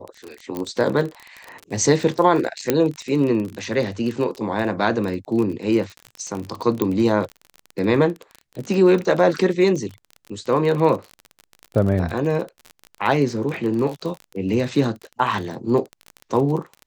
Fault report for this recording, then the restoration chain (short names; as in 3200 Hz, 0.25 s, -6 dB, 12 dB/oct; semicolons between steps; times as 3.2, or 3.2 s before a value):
crackle 32/s -26 dBFS
0.57 pop -14 dBFS
2.7 pop -3 dBFS
6.82 pop -8 dBFS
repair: de-click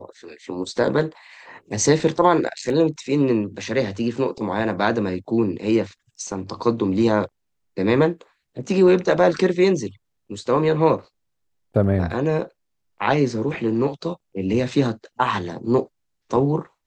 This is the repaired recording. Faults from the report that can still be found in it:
2.7 pop